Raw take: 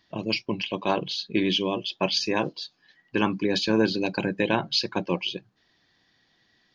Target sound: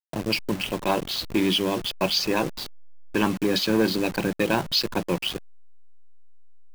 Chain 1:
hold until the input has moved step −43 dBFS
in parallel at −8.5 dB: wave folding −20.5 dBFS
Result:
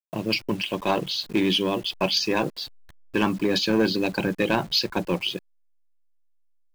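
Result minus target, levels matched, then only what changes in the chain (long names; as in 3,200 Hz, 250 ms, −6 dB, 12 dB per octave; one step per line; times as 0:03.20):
hold until the input has moved: distortion −12 dB
change: hold until the input has moved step −32 dBFS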